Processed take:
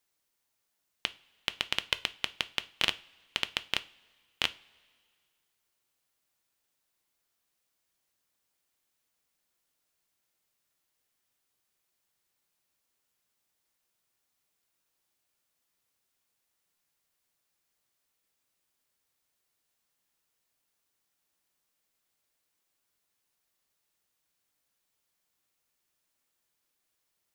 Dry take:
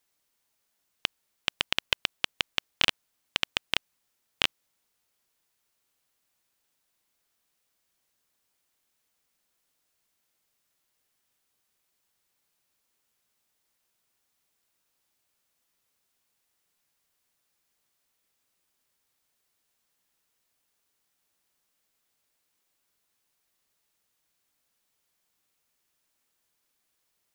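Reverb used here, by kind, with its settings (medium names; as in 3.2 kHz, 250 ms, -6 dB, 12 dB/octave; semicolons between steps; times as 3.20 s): two-slope reverb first 0.32 s, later 2 s, from -20 dB, DRR 12 dB; trim -3.5 dB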